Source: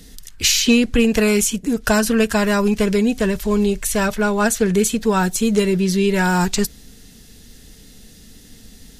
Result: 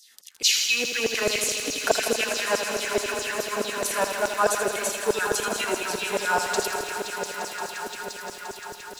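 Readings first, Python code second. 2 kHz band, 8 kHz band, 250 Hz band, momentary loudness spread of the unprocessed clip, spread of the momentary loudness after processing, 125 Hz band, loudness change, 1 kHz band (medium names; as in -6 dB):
-2.5 dB, -4.0 dB, -20.0 dB, 4 LU, 11 LU, -21.5 dB, -7.5 dB, -3.0 dB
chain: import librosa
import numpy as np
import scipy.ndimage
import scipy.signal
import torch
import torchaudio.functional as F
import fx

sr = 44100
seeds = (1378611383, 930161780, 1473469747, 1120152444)

y = fx.echo_swell(x, sr, ms=174, loudest=5, wet_db=-13.0)
y = fx.filter_lfo_highpass(y, sr, shape='saw_down', hz=4.7, low_hz=500.0, high_hz=6500.0, q=2.8)
y = fx.low_shelf(y, sr, hz=420.0, db=9.0)
y = fx.echo_crushed(y, sr, ms=81, feedback_pct=80, bits=6, wet_db=-8)
y = y * librosa.db_to_amplitude(-8.5)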